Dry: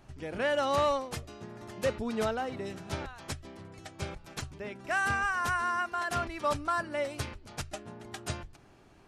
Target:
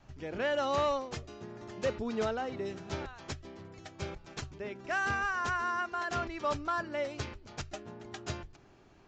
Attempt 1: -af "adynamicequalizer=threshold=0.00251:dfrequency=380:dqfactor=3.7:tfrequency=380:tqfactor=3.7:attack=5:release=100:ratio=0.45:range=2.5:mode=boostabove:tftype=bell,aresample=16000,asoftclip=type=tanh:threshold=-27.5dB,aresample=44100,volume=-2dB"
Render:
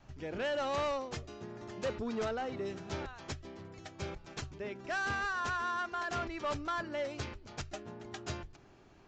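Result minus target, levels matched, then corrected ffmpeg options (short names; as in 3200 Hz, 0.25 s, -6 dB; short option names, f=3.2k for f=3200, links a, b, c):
soft clip: distortion +15 dB
-af "adynamicequalizer=threshold=0.00251:dfrequency=380:dqfactor=3.7:tfrequency=380:tqfactor=3.7:attack=5:release=100:ratio=0.45:range=2.5:mode=boostabove:tftype=bell,aresample=16000,asoftclip=type=tanh:threshold=-17.5dB,aresample=44100,volume=-2dB"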